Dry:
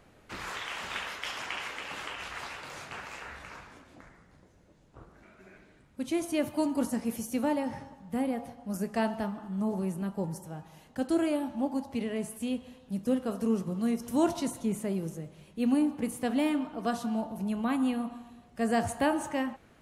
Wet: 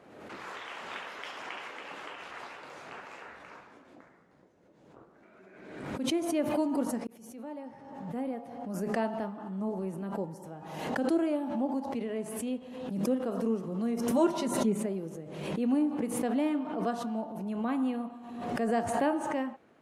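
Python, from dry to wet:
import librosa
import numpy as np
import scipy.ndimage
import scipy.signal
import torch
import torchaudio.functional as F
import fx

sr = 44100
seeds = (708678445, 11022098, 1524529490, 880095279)

y = fx.comb(x, sr, ms=5.1, depth=0.96, at=(14.12, 14.86))
y = fx.edit(y, sr, fx.fade_in_span(start_s=7.07, length_s=1.68), tone=tone)
y = scipy.signal.sosfilt(scipy.signal.butter(2, 330.0, 'highpass', fs=sr, output='sos'), y)
y = fx.tilt_eq(y, sr, slope=-3.0)
y = fx.pre_swell(y, sr, db_per_s=46.0)
y = y * 10.0 ** (-2.5 / 20.0)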